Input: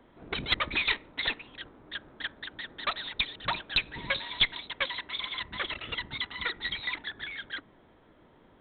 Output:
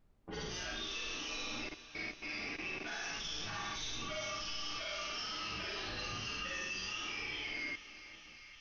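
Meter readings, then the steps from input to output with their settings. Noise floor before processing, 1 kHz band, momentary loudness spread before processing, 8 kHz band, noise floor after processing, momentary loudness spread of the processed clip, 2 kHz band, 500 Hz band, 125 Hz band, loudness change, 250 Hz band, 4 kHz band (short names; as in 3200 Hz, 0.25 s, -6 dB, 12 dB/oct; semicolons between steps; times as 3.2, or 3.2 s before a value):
-60 dBFS, -6.5 dB, 13 LU, n/a, -56 dBFS, 5 LU, -8.0 dB, -3.5 dB, -4.5 dB, -7.5 dB, -2.5 dB, -8.5 dB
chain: inharmonic rescaling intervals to 116%; low-pass opened by the level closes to 1200 Hz, open at -32.5 dBFS; high shelf 4400 Hz -8.5 dB; Schroeder reverb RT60 0.78 s, DRR -9.5 dB; level quantiser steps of 22 dB; gate with hold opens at -56 dBFS; harmonic-percussive split percussive -9 dB; added noise brown -72 dBFS; on a send: thinning echo 0.398 s, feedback 80%, high-pass 540 Hz, level -15.5 dB; on the sum: gain +5 dB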